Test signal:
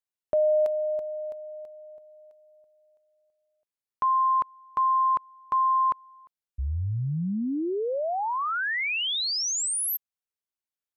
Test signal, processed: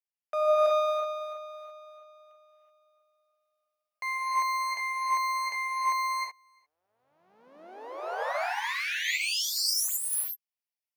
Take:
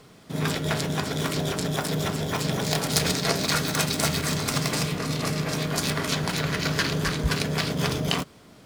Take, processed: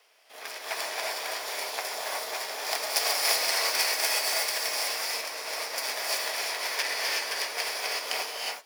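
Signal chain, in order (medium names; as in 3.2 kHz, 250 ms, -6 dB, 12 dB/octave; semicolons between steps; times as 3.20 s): comb filter that takes the minimum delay 0.38 ms; high-pass 630 Hz 24 dB/octave; band-stop 7.7 kHz, Q 5.4; dynamic bell 2.9 kHz, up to -7 dB, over -49 dBFS, Q 3.8; gated-style reverb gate 400 ms rising, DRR -4 dB; upward expansion 1.5:1, over -33 dBFS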